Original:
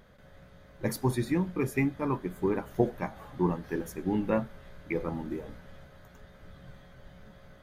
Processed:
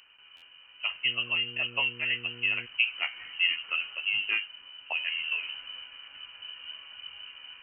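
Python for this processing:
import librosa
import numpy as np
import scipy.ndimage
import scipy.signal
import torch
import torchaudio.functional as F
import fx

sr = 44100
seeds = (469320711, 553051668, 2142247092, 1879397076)

y = fx.rider(x, sr, range_db=10, speed_s=0.5)
y = fx.freq_invert(y, sr, carrier_hz=3000)
y = fx.dmg_buzz(y, sr, base_hz=120.0, harmonics=4, level_db=-49.0, tilt_db=-2, odd_only=False, at=(1.04, 2.65), fade=0.02)
y = fx.buffer_glitch(y, sr, at_s=(0.36,), block=512, repeats=4)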